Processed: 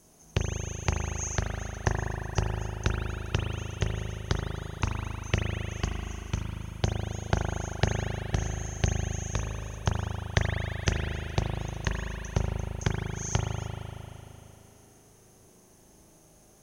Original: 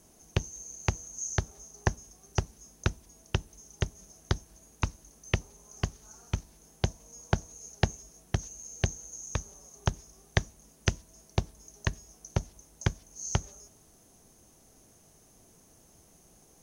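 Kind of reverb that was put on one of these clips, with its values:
spring reverb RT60 3.1 s, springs 38 ms, chirp 55 ms, DRR −1 dB

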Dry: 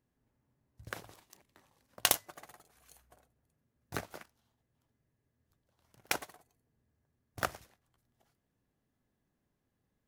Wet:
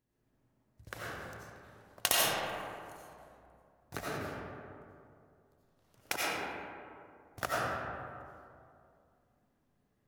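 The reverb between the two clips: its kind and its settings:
comb and all-pass reverb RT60 2.5 s, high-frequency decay 0.4×, pre-delay 50 ms, DRR −7.5 dB
level −3.5 dB

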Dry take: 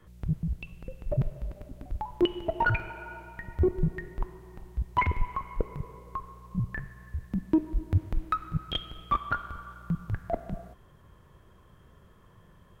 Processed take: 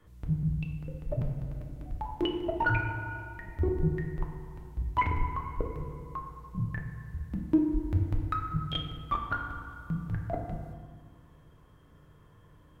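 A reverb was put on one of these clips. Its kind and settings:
feedback delay network reverb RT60 1.4 s, low-frequency decay 1.55×, high-frequency decay 0.45×, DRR 2.5 dB
level −4 dB

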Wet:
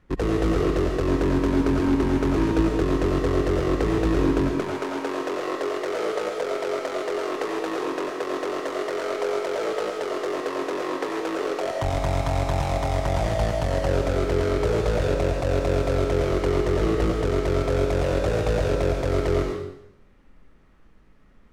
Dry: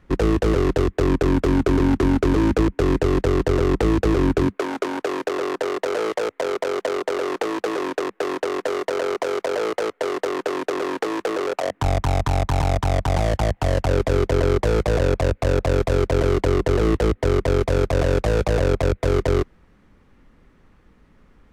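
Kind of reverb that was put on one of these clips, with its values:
comb and all-pass reverb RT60 0.79 s, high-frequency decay 1×, pre-delay 55 ms, DRR 0 dB
level −5.5 dB

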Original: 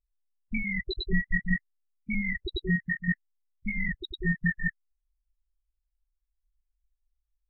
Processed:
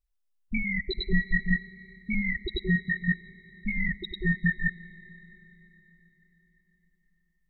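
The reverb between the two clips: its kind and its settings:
comb and all-pass reverb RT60 4.7 s, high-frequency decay 0.8×, pre-delay 20 ms, DRR 16.5 dB
level +1.5 dB

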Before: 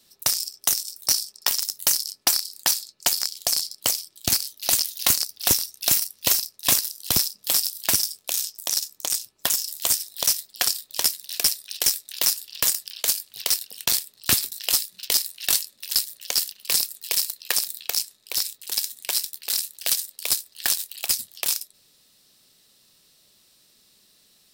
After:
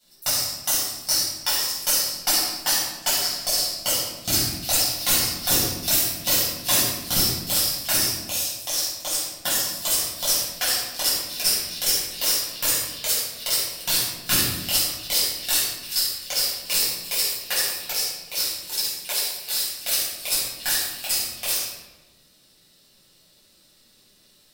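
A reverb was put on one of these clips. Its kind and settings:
rectangular room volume 630 cubic metres, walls mixed, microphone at 7.5 metres
level −11 dB

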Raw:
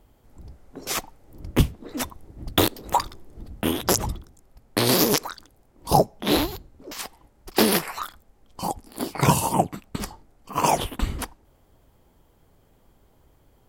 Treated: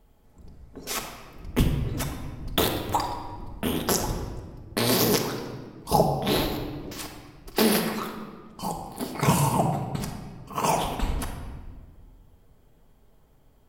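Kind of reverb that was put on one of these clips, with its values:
rectangular room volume 1,700 cubic metres, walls mixed, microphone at 1.5 metres
level −4.5 dB

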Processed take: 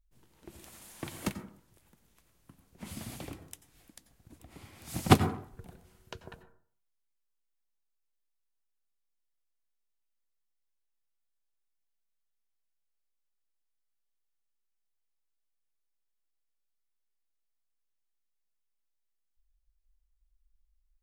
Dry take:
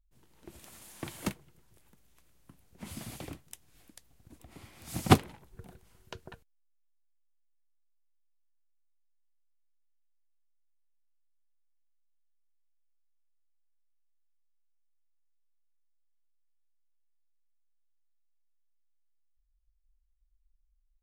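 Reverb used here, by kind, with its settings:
dense smooth reverb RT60 0.52 s, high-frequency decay 0.3×, pre-delay 80 ms, DRR 10.5 dB

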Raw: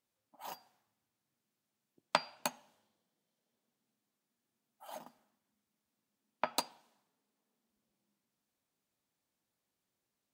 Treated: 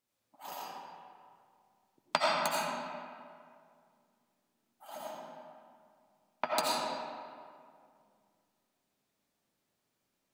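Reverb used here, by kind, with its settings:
comb and all-pass reverb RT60 2.2 s, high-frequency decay 0.6×, pre-delay 45 ms, DRR −5.5 dB

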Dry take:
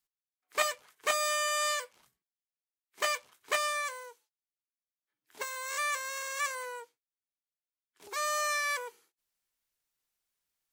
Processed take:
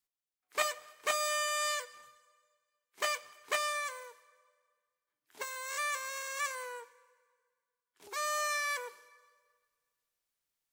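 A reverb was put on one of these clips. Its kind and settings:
dense smooth reverb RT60 1.8 s, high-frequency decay 0.85×, DRR 17.5 dB
level −2.5 dB

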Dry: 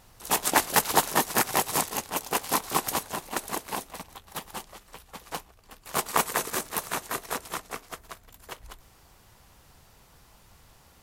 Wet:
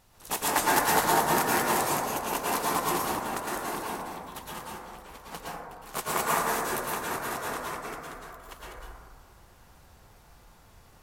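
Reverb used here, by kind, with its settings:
dense smooth reverb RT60 1.6 s, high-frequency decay 0.25×, pre-delay 100 ms, DRR −6.5 dB
level −6.5 dB

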